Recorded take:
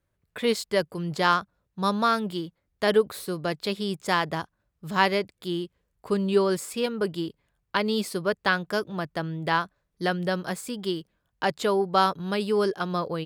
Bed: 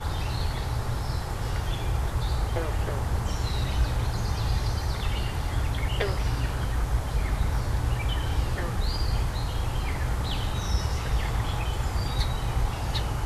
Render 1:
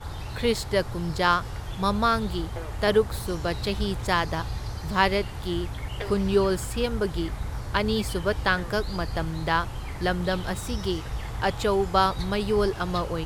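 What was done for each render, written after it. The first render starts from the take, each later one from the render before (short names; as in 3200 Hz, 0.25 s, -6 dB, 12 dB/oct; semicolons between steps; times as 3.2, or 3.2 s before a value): add bed -6 dB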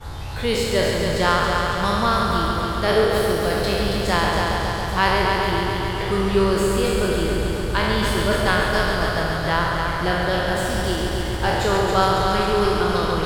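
spectral trails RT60 1.18 s; multi-head echo 0.138 s, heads first and second, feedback 72%, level -7.5 dB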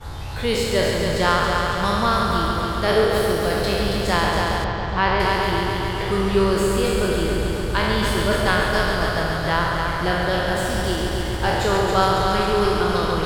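4.64–5.2 air absorption 170 m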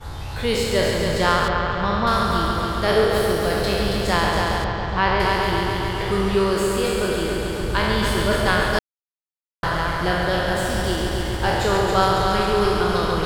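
1.48–2.07 air absorption 190 m; 6.35–7.6 low shelf 160 Hz -6.5 dB; 8.79–9.63 mute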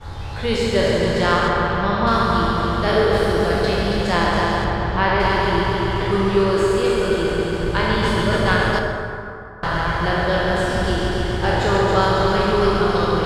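air absorption 55 m; plate-style reverb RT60 2.8 s, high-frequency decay 0.45×, DRR 2 dB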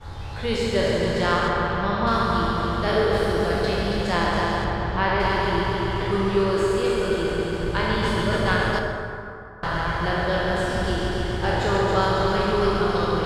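gain -4 dB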